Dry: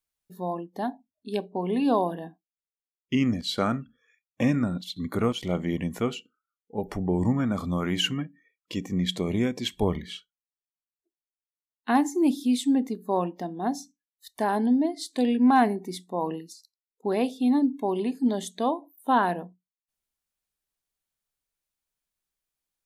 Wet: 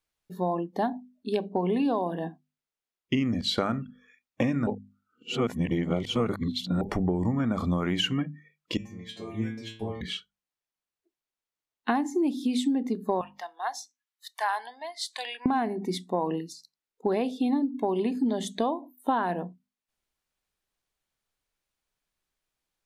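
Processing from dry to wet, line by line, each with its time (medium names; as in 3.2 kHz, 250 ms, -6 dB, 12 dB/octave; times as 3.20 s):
4.67–6.81 s: reverse
8.77–10.01 s: inharmonic resonator 110 Hz, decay 0.62 s, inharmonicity 0.002
13.21–15.46 s: high-pass 920 Hz 24 dB/octave
whole clip: treble shelf 7 kHz -11.5 dB; hum notches 50/100/150/200/250 Hz; compression 12:1, threshold -29 dBFS; trim +6.5 dB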